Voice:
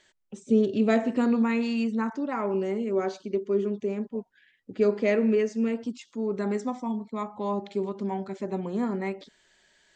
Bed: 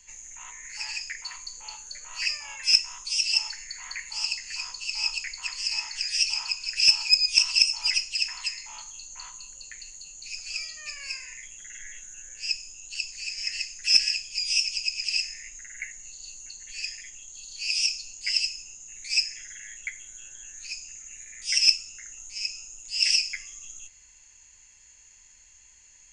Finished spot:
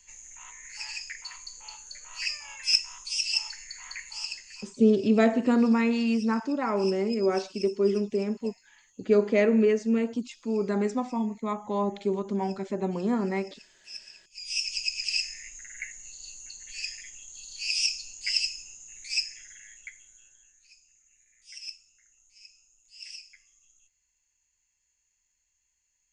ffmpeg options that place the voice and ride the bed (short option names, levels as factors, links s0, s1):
-filter_complex "[0:a]adelay=4300,volume=1.19[s0];[1:a]volume=7.94,afade=t=out:st=4:d=0.85:silence=0.105925,afade=t=in:st=14.3:d=0.48:silence=0.0841395,afade=t=out:st=18.54:d=2.07:silence=0.105925[s1];[s0][s1]amix=inputs=2:normalize=0"